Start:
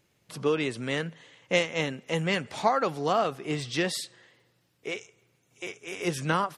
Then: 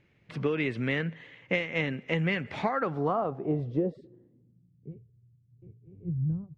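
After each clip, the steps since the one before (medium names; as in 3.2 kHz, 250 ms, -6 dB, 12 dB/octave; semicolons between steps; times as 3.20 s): peaking EQ 1.2 kHz -10 dB 2.9 oct; low-pass sweep 2.1 kHz -> 110 Hz, 2.60–5.09 s; compression 10:1, threshold -30 dBFS, peak gain reduction 9.5 dB; trim +6.5 dB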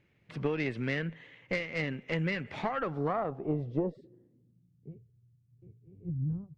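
valve stage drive 18 dB, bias 0.65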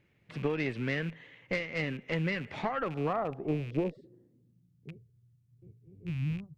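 rattle on loud lows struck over -39 dBFS, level -38 dBFS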